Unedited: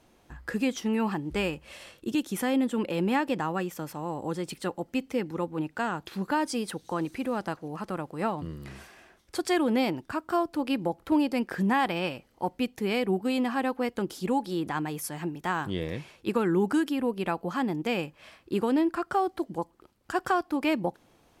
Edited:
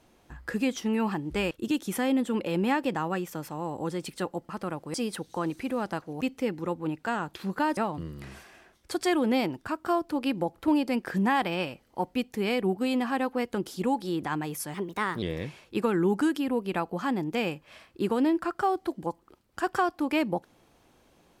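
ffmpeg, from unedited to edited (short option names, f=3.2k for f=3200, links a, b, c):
-filter_complex "[0:a]asplit=8[a][b][c][d][e][f][g][h];[a]atrim=end=1.512[i];[b]atrim=start=1.948:end=4.932[j];[c]atrim=start=7.758:end=8.212[k];[d]atrim=start=6.488:end=7.762[l];[e]atrim=start=4.928:end=6.492[m];[f]atrim=start=8.208:end=15.184[n];[g]atrim=start=15.18:end=15.74,asetpts=PTS-STARTPTS,asetrate=51156,aresample=44100[o];[h]atrim=start=15.736[p];[i][j]acrossfade=d=0.004:c1=hsin:c2=hsin[q];[q][k]acrossfade=d=0.004:c1=hsin:c2=hsin[r];[r][l]acrossfade=d=0.004:c1=hsin:c2=hsin[s];[s][m]acrossfade=d=0.004:c1=hsin:c2=hsin[t];[t][n]acrossfade=d=0.004:c1=hsin:c2=hsin[u];[u][o]acrossfade=d=0.004:c1=hsin:c2=hsin[v];[v][p]acrossfade=d=0.004:c1=hsin:c2=hsin"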